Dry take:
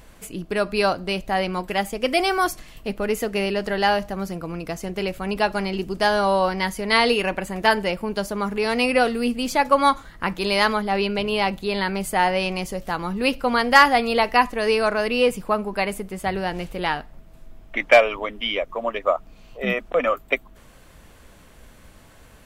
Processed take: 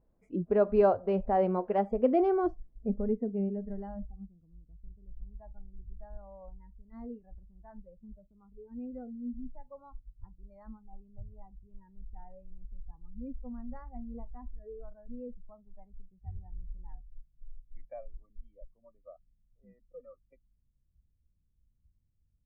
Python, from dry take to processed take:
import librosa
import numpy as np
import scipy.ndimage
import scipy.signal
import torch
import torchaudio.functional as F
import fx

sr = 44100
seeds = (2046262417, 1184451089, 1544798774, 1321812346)

y = fx.filter_sweep_lowpass(x, sr, from_hz=600.0, to_hz=110.0, start_s=1.73, end_s=4.56, q=0.83)
y = fx.noise_reduce_blind(y, sr, reduce_db=22)